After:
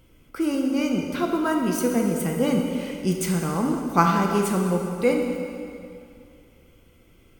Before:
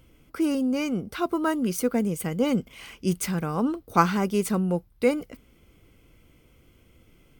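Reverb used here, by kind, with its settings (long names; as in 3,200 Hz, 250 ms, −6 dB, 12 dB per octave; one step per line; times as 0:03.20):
dense smooth reverb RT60 2.5 s, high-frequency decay 0.85×, DRR 1 dB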